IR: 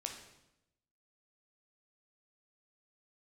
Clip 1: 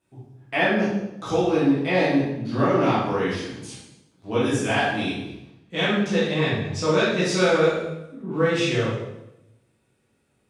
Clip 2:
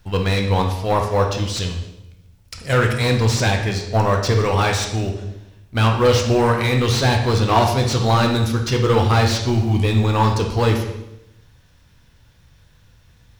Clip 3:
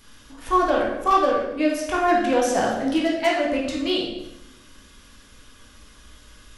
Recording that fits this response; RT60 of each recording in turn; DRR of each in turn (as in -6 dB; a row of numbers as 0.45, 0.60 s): 2; 0.90, 0.90, 0.90 s; -11.0, 2.0, -4.5 dB